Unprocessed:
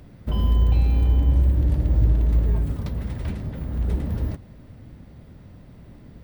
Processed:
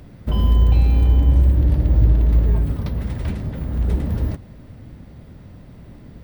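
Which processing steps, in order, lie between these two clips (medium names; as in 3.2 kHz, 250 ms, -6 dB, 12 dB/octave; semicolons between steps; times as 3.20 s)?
1.53–3.00 s: peaking EQ 7.5 kHz -11.5 dB 0.36 oct; trim +4 dB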